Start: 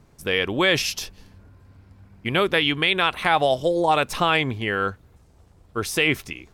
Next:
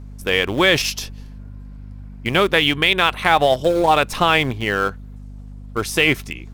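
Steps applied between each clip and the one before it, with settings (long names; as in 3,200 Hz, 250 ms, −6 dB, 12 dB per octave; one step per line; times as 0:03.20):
in parallel at −10 dB: centre clipping without the shift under −21 dBFS
on the sum: mains hum 50 Hz, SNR 16 dB
level +2 dB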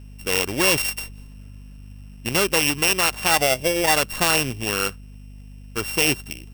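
samples sorted by size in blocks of 16 samples
high-shelf EQ 4,700 Hz +5.5 dB
level −5 dB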